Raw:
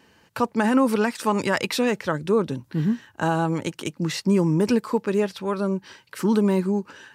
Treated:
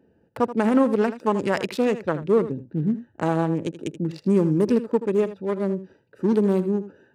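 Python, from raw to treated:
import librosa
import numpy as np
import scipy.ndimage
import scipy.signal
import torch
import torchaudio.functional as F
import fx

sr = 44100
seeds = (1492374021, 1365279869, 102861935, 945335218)

y = fx.wiener(x, sr, points=41)
y = fx.peak_eq(y, sr, hz=450.0, db=5.5, octaves=1.9)
y = y + 10.0 ** (-13.5 / 20.0) * np.pad(y, (int(80 * sr / 1000.0), 0))[:len(y)]
y = F.gain(torch.from_numpy(y), -2.5).numpy()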